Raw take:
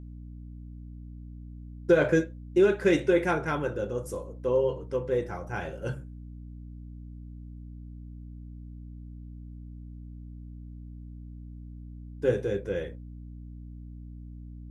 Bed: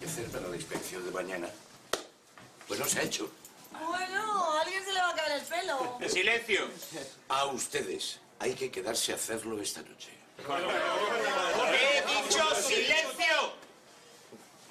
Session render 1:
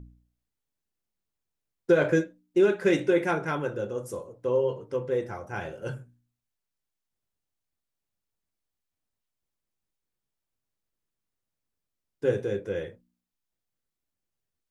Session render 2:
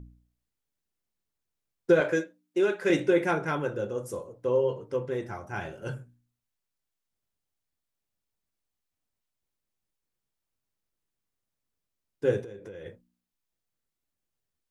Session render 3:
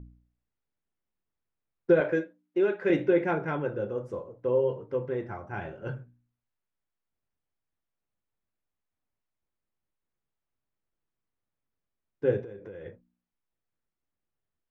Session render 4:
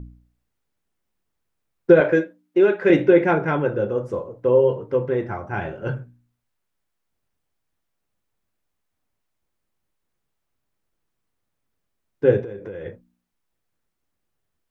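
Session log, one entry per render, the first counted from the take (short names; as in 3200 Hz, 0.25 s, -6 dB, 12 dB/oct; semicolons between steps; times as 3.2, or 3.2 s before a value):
de-hum 60 Hz, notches 5
2–2.9 HPF 470 Hz 6 dB/oct; 5.05–5.88 bell 500 Hz -9 dB 0.23 oct; 12.43–12.86 compressor 16:1, threshold -38 dBFS
LPF 2200 Hz 12 dB/oct; dynamic EQ 1200 Hz, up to -4 dB, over -41 dBFS, Q 2
gain +9 dB; limiter -2 dBFS, peak gain reduction 0.5 dB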